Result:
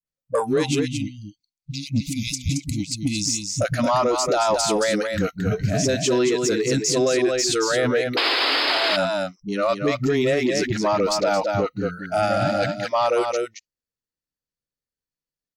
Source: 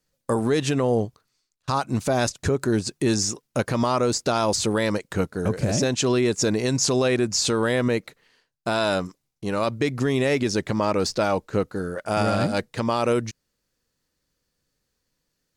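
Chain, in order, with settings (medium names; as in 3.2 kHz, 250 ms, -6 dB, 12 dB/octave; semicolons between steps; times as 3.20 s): spectral selection erased 0.59–3.18 s, 330–2000 Hz; spectral noise reduction 23 dB; dynamic bell 680 Hz, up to +4 dB, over -33 dBFS, Q 0.78; on a send: delay 223 ms -7 dB; on the sum: painted sound noise, 8.11–8.91 s, 260–5200 Hz -16 dBFS; phase dispersion highs, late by 59 ms, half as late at 310 Hz; in parallel at -7 dB: saturation -18.5 dBFS, distortion -11 dB; on the sum: peak limiter -12.5 dBFS, peak gain reduction 9.5 dB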